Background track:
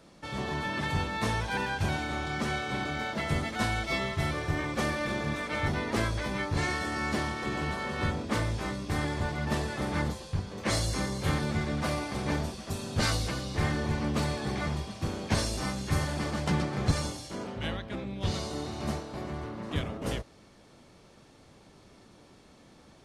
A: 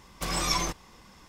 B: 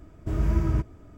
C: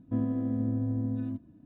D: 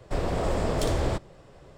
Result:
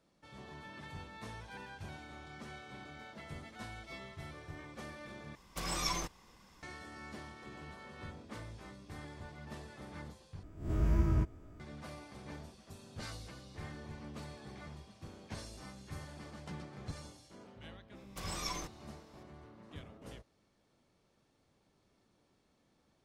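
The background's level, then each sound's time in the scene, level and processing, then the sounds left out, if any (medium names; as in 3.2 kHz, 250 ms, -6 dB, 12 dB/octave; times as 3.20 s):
background track -17.5 dB
5.35 s: replace with A -8 dB
10.43 s: replace with B -7 dB + reverse spectral sustain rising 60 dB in 0.46 s
17.95 s: add A -12.5 dB
not used: C, D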